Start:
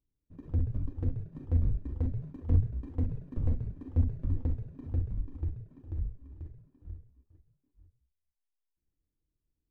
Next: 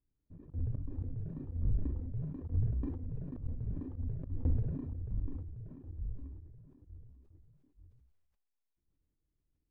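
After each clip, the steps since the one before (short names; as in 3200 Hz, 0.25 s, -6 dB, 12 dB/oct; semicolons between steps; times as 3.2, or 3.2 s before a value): LPF 1000 Hz 6 dB/oct; auto swell 0.229 s; sustainer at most 44 dB/s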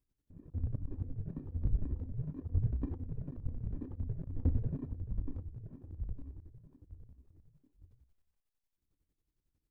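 chopper 11 Hz, depth 60%, duty 40%; gain +2.5 dB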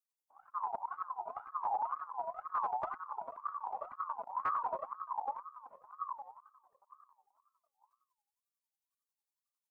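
per-bin expansion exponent 1.5; overloaded stage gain 34 dB; ring modulator with a swept carrier 1000 Hz, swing 20%, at 2 Hz; gain +6 dB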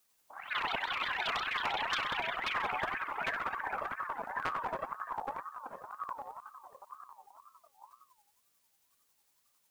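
echoes that change speed 0.119 s, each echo +6 st, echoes 3; spectral compressor 2:1; gain +3 dB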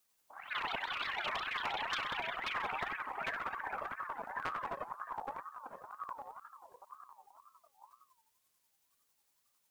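record warp 33 1/3 rpm, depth 160 cents; gain -3.5 dB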